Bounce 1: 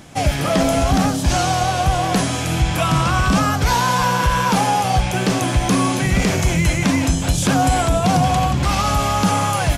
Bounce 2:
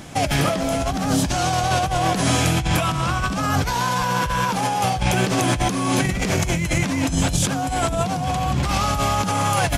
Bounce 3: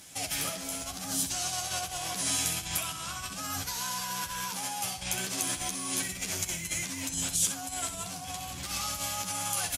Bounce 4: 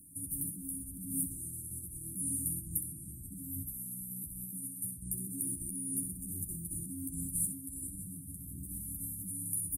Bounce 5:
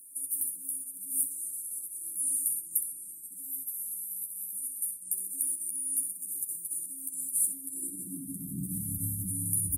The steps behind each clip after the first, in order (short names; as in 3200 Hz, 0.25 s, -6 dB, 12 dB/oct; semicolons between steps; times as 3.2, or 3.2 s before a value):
negative-ratio compressor -21 dBFS, ratio -1
added harmonics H 4 -40 dB, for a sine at -6.5 dBFS; pre-emphasis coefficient 0.9; early reflections 11 ms -4 dB, 64 ms -8.5 dB; gain -3.5 dB
Chebyshev band-stop 320–9200 Hz, order 5
high-pass sweep 890 Hz -> 72 Hz, 7.21–9.31; gain +6 dB